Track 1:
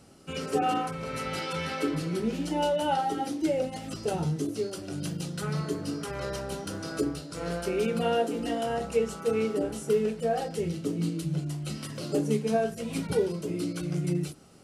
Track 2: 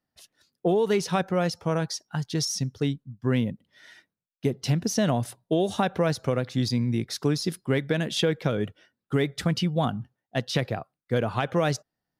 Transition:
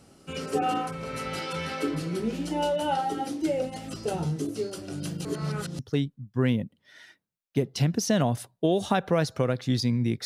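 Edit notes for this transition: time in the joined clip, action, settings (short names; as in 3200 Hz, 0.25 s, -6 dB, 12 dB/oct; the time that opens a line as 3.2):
track 1
5.25–5.79 reverse
5.79 switch to track 2 from 2.67 s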